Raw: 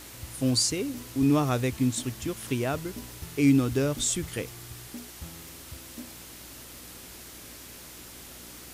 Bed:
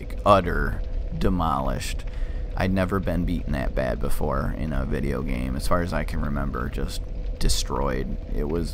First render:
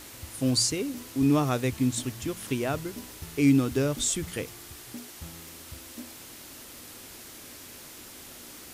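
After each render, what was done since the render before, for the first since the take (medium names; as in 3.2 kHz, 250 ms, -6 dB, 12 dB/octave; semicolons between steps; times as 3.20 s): de-hum 60 Hz, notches 3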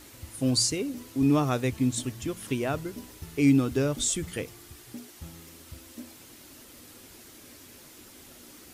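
noise reduction 6 dB, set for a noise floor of -46 dBFS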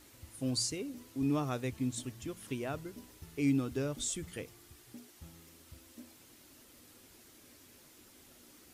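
trim -9 dB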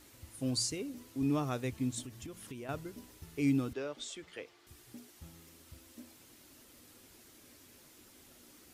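2.02–2.69 s: compression, threshold -41 dBFS; 3.73–4.67 s: three-band isolator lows -19 dB, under 340 Hz, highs -18 dB, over 5.2 kHz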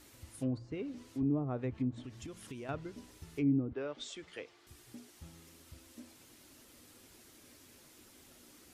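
low-pass that closes with the level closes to 540 Hz, closed at -28.5 dBFS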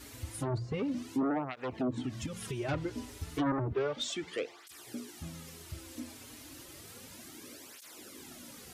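in parallel at -8 dB: sine folder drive 14 dB, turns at -20.5 dBFS; on the sum: cancelling through-zero flanger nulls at 0.32 Hz, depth 6 ms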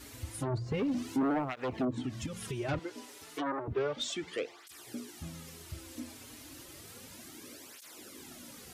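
0.66–1.85 s: waveshaping leveller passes 1; 2.79–3.68 s: high-pass 390 Hz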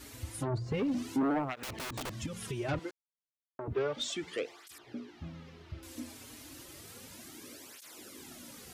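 1.63–2.20 s: integer overflow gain 33.5 dB; 2.91–3.59 s: mute; 4.78–5.83 s: distance through air 260 m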